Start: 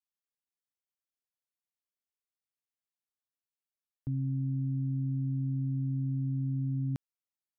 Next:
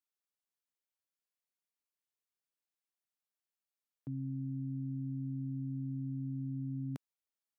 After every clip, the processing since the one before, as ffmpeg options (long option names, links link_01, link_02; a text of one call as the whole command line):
ffmpeg -i in.wav -af "highpass=180,volume=-2dB" out.wav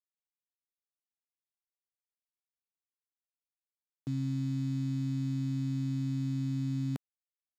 ffmpeg -i in.wav -af "acrusher=bits=8:mix=0:aa=0.5,volume=6dB" out.wav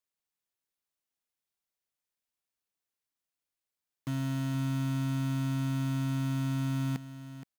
ffmpeg -i in.wav -filter_complex "[0:a]asplit=2[link_01][link_02];[link_02]aeval=exprs='(mod(59.6*val(0)+1,2)-1)/59.6':channel_layout=same,volume=-3dB[link_03];[link_01][link_03]amix=inputs=2:normalize=0,aecho=1:1:471:0.237" out.wav